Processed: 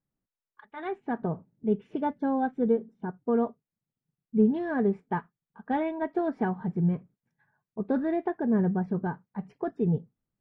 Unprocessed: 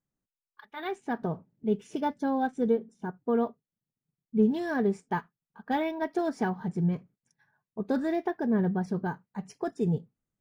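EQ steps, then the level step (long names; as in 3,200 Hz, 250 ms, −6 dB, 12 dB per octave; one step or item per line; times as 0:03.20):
high-frequency loss of the air 490 metres
+2.0 dB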